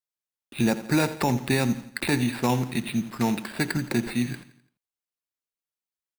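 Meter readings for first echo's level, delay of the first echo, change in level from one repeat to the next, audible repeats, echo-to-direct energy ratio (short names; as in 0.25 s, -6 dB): -15.0 dB, 85 ms, -7.0 dB, 3, -14.0 dB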